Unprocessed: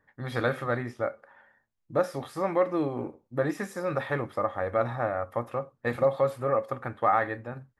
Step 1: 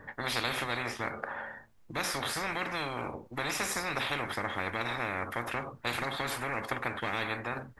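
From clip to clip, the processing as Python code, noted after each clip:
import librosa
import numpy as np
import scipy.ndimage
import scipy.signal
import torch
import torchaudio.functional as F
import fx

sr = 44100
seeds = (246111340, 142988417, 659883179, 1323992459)

y = fx.high_shelf(x, sr, hz=2700.0, db=-8.5)
y = fx.spectral_comp(y, sr, ratio=10.0)
y = F.gain(torch.from_numpy(y), -4.5).numpy()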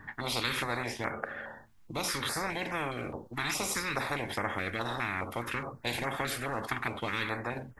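y = fx.filter_held_notch(x, sr, hz=4.8, low_hz=520.0, high_hz=4100.0)
y = F.gain(torch.from_numpy(y), 2.0).numpy()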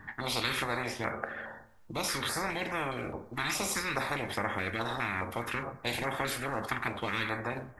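y = fx.rev_fdn(x, sr, rt60_s=0.91, lf_ratio=0.75, hf_ratio=0.45, size_ms=88.0, drr_db=11.0)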